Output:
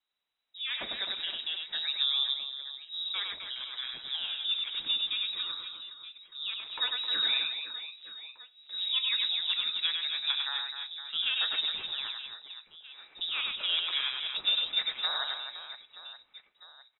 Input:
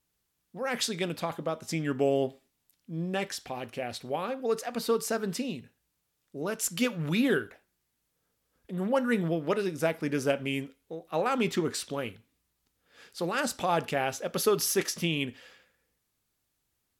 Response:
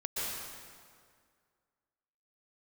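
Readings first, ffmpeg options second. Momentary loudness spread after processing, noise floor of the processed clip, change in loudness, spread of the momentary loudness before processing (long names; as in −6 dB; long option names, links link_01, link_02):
17 LU, −68 dBFS, 0.0 dB, 10 LU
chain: -af "lowpass=frequency=3400:width_type=q:width=0.5098,lowpass=frequency=3400:width_type=q:width=0.6013,lowpass=frequency=3400:width_type=q:width=0.9,lowpass=frequency=3400:width_type=q:width=2.563,afreqshift=-4000,flanger=delay=3.9:depth=2.1:regen=-80:speed=0.27:shape=triangular,aecho=1:1:100|260|516|925.6|1581:0.631|0.398|0.251|0.158|0.1"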